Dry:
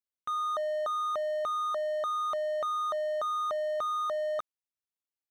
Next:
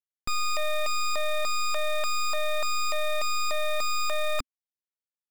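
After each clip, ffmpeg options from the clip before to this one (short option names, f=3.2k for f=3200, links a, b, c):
-af "acrusher=bits=9:mode=log:mix=0:aa=0.000001,aeval=exprs='0.0501*(cos(1*acos(clip(val(0)/0.0501,-1,1)))-cos(1*PI/2))+0.00794*(cos(3*acos(clip(val(0)/0.0501,-1,1)))-cos(3*PI/2))+0.0224*(cos(4*acos(clip(val(0)/0.0501,-1,1)))-cos(4*PI/2))+0.00282*(cos(7*acos(clip(val(0)/0.0501,-1,1)))-cos(7*PI/2))+0.0224*(cos(8*acos(clip(val(0)/0.0501,-1,1)))-cos(8*PI/2))':c=same,equalizer=f=260:w=3.1:g=5.5"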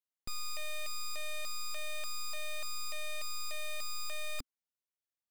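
-af "asoftclip=type=hard:threshold=-29dB,volume=-4dB"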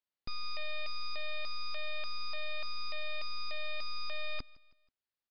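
-af "aecho=1:1:161|322|483:0.0708|0.0319|0.0143,aresample=11025,aresample=44100,volume=1.5dB"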